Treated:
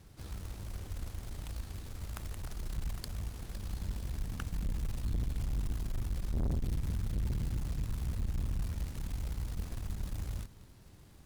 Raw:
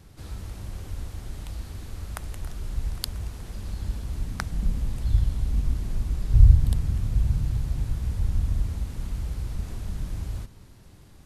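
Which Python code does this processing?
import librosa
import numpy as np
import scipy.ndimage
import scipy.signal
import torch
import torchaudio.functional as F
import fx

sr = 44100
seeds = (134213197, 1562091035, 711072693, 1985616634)

y = fx.quant_float(x, sr, bits=2)
y = fx.tube_stage(y, sr, drive_db=26.0, bias=0.55)
y = y * librosa.db_to_amplitude(-3.0)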